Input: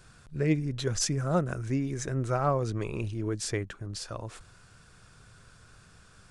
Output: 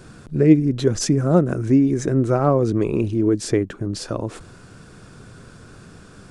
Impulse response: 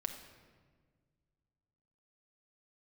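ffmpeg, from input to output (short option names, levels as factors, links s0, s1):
-filter_complex "[0:a]equalizer=f=290:t=o:w=2.1:g=14,asplit=2[s0][s1];[s1]acompressor=threshold=0.0316:ratio=6,volume=1.26[s2];[s0][s2]amix=inputs=2:normalize=0"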